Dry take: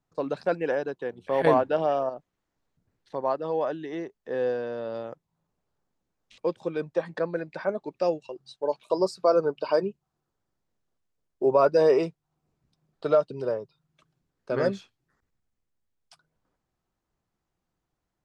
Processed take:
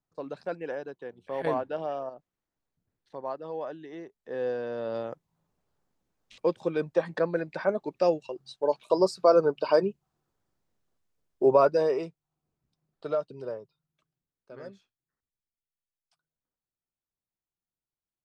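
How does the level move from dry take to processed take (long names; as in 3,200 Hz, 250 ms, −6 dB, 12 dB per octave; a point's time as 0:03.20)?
0:04.02 −8 dB
0:04.96 +1.5 dB
0:11.53 +1.5 dB
0:11.94 −7.5 dB
0:13.54 −7.5 dB
0:14.56 −18.5 dB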